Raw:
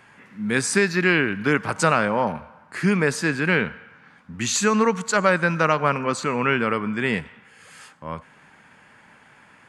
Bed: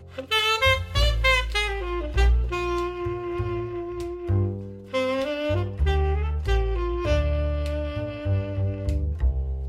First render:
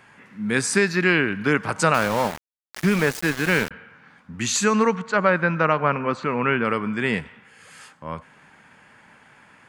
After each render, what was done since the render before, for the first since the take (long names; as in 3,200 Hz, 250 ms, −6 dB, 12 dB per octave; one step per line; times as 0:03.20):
0:01.94–0:03.71: centre clipping without the shift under −25 dBFS
0:04.95–0:06.65: low-pass filter 2,800 Hz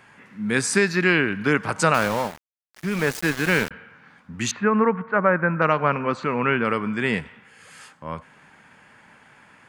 0:02.08–0:03.13: duck −20.5 dB, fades 0.41 s
0:04.51–0:05.62: low-pass filter 2,000 Hz 24 dB per octave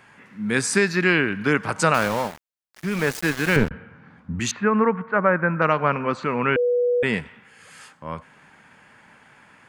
0:03.56–0:04.40: spectral tilt −3.5 dB per octave
0:06.56–0:07.03: beep over 488 Hz −17 dBFS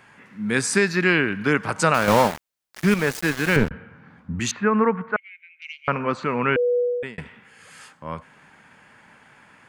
0:02.08–0:02.94: clip gain +8 dB
0:05.16–0:05.88: Chebyshev high-pass with heavy ripple 2,100 Hz, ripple 6 dB
0:06.78–0:07.18: fade out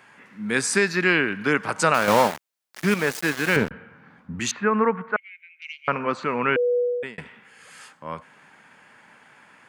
high-pass filter 230 Hz 6 dB per octave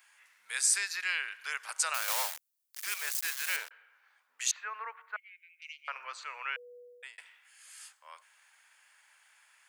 high-pass filter 590 Hz 24 dB per octave
first difference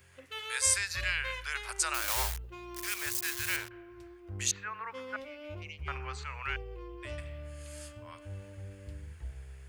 mix in bed −19 dB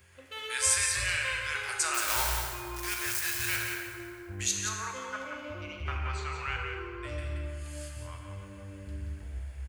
on a send: single-tap delay 177 ms −6.5 dB
on the sum: dense smooth reverb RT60 2.3 s, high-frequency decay 0.6×, DRR 1.5 dB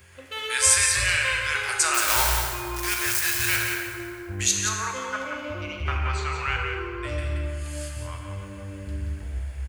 level +7.5 dB